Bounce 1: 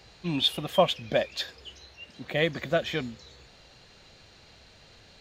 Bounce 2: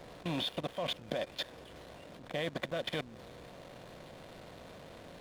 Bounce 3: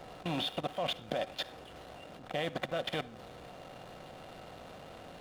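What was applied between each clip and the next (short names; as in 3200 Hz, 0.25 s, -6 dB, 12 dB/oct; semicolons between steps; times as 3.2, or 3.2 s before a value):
per-bin compression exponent 0.6; level quantiser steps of 14 dB; backlash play -35.5 dBFS; gain -6 dB
small resonant body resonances 770/1300/2800 Hz, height 8 dB, ringing for 25 ms; on a send at -17.5 dB: reverb RT60 0.40 s, pre-delay 47 ms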